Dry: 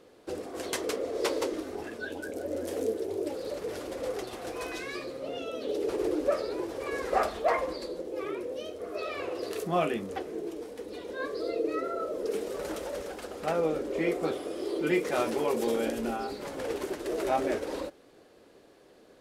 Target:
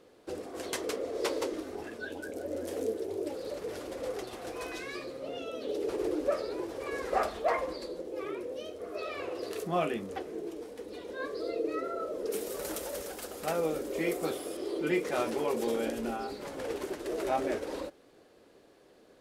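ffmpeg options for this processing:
ffmpeg -i in.wav -filter_complex "[0:a]asettb=1/sr,asplit=3[link_01][link_02][link_03];[link_01]atrim=end=12.324[link_04];[link_02]atrim=start=12.32:end=14.57,asetpts=PTS-STARTPTS,afade=type=in:duration=0.004:curve=qsin,afade=type=out:start_time=2.246:duration=0.004:curve=qsin,aemphasis=mode=production:type=50fm[link_05];[link_03]atrim=start=14.566[link_06];[link_04][link_05]acrossfade=duration=0.004:curve1=hsin:curve2=qsin[link_07];[link_07][link_06]acrossfade=duration=0.004:curve1=qsin:curve2=hsin,volume=-2.5dB" out.wav

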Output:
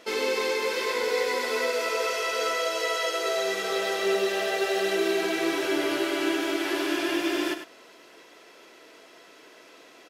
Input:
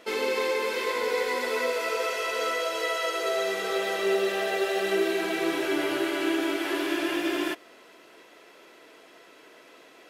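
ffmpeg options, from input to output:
ffmpeg -i in.wav -af "equalizer=frequency=5500:width_type=o:width=0.86:gain=5,aecho=1:1:99:0.335" out.wav

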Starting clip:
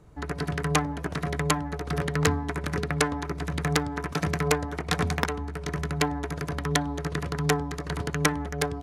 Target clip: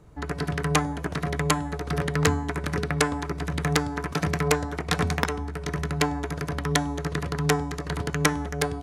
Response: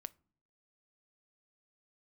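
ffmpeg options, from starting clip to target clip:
-af "bandreject=frequency=374.8:width_type=h:width=4,bandreject=frequency=749.6:width_type=h:width=4,bandreject=frequency=1124.4:width_type=h:width=4,bandreject=frequency=1499.2:width_type=h:width=4,bandreject=frequency=1874:width_type=h:width=4,bandreject=frequency=2248.8:width_type=h:width=4,bandreject=frequency=2623.6:width_type=h:width=4,bandreject=frequency=2998.4:width_type=h:width=4,bandreject=frequency=3373.2:width_type=h:width=4,bandreject=frequency=3748:width_type=h:width=4,bandreject=frequency=4122.8:width_type=h:width=4,bandreject=frequency=4497.6:width_type=h:width=4,bandreject=frequency=4872.4:width_type=h:width=4,bandreject=frequency=5247.2:width_type=h:width=4,bandreject=frequency=5622:width_type=h:width=4,bandreject=frequency=5996.8:width_type=h:width=4,bandreject=frequency=6371.6:width_type=h:width=4,bandreject=frequency=6746.4:width_type=h:width=4,bandreject=frequency=7121.2:width_type=h:width=4,bandreject=frequency=7496:width_type=h:width=4,bandreject=frequency=7870.8:width_type=h:width=4,bandreject=frequency=8245.6:width_type=h:width=4,bandreject=frequency=8620.4:width_type=h:width=4,bandreject=frequency=8995.2:width_type=h:width=4,bandreject=frequency=9370:width_type=h:width=4,bandreject=frequency=9744.8:width_type=h:width=4,bandreject=frequency=10119.6:width_type=h:width=4,volume=1.5dB"

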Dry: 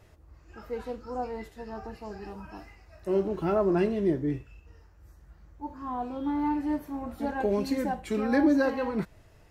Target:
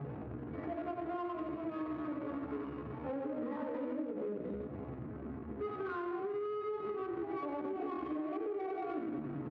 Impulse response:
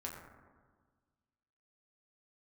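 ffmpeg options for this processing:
-filter_complex "[0:a]aeval=exprs='val(0)+0.5*0.0316*sgn(val(0))':channel_layout=same,aecho=1:1:92|184|276|368|460|552:0.355|0.185|0.0959|0.0499|0.0259|0.0135[link_01];[1:a]atrim=start_sample=2205,asetrate=52920,aresample=44100[link_02];[link_01][link_02]afir=irnorm=-1:irlink=0,alimiter=limit=-21.5dB:level=0:latency=1:release=120,equalizer=frequency=760:width_type=o:width=0.32:gain=4,asetrate=62367,aresample=44100,atempo=0.707107,equalizer=frequency=290:width_type=o:width=0.46:gain=13.5,adynamicsmooth=sensitivity=3:basefreq=550,bandreject=frequency=960:width=14,acompressor=threshold=-33dB:ratio=6,highpass=120,lowpass=2100,volume=-3dB"

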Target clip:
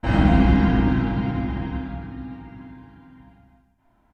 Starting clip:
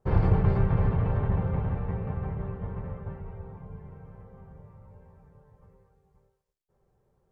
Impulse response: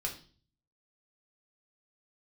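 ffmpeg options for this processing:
-filter_complex "[0:a]asetrate=78057,aresample=44100,aecho=1:1:30|69|119.7|185.6|271.3:0.631|0.398|0.251|0.158|0.1[link_01];[1:a]atrim=start_sample=2205,asetrate=29106,aresample=44100[link_02];[link_01][link_02]afir=irnorm=-1:irlink=0"

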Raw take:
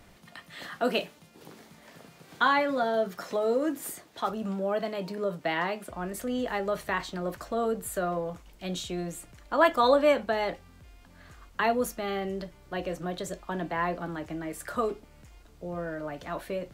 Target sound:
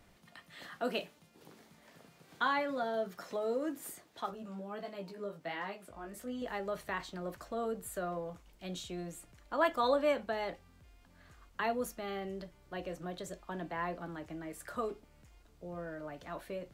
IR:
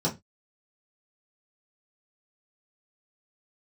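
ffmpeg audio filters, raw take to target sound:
-filter_complex "[0:a]asettb=1/sr,asplit=3[link_01][link_02][link_03];[link_01]atrim=end=4.264[link_04];[link_02]atrim=start=4.26:end=6.42,asetpts=PTS-STARTPTS,afade=type=in:duration=0.004:curve=qsin,afade=type=out:start_time=2.156:duration=0.004:curve=qsin,flanger=delay=15:depth=4.7:speed=1.4[link_05];[link_03]atrim=start=6.416[link_06];[link_04][link_05]acrossfade=duration=0.004:curve1=hsin:curve2=qsin[link_07];[link_07][link_06]acrossfade=duration=0.004:curve1=qsin:curve2=hsin,volume=-8dB"

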